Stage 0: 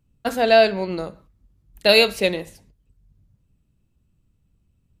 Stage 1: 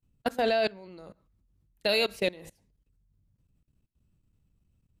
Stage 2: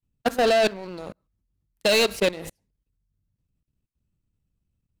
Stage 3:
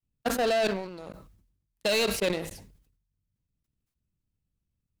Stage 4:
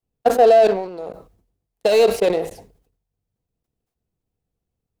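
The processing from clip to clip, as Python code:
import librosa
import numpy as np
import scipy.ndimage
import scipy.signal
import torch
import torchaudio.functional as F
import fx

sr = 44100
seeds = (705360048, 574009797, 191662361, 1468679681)

y1 = fx.level_steps(x, sr, step_db=22)
y1 = y1 * 10.0 ** (-2.5 / 20.0)
y2 = fx.leveller(y1, sr, passes=3)
y3 = fx.sustainer(y2, sr, db_per_s=72.0)
y3 = y3 * 10.0 ** (-6.0 / 20.0)
y4 = fx.small_body(y3, sr, hz=(470.0, 700.0), ring_ms=20, db=15)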